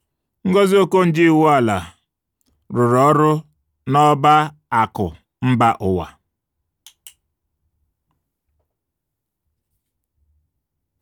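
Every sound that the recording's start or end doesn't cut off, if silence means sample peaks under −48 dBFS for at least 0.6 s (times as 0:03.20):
0:06.86–0:07.13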